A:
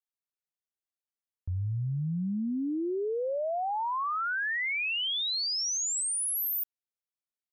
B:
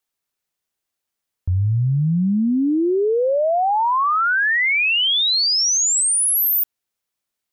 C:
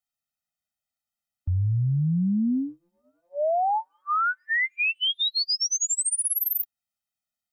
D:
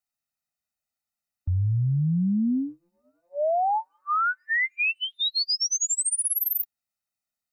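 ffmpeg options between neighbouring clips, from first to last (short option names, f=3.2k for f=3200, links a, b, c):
-af "acontrast=74,volume=6dB"
-af "afftfilt=real='re*eq(mod(floor(b*sr/1024/300),2),0)':imag='im*eq(mod(floor(b*sr/1024/300),2),0)':win_size=1024:overlap=0.75,volume=-5dB"
-af "asuperstop=centerf=3300:order=4:qfactor=6.4"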